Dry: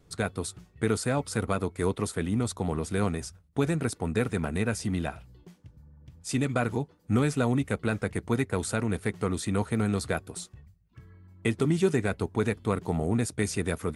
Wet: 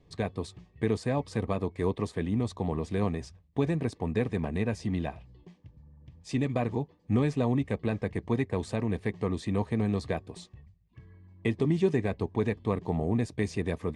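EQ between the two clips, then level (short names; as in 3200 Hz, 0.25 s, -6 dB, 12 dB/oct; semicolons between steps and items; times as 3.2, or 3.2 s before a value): LPF 4100 Hz 12 dB/oct; dynamic EQ 2700 Hz, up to -3 dB, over -44 dBFS, Q 0.9; Butterworth band-stop 1400 Hz, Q 3.8; -1.0 dB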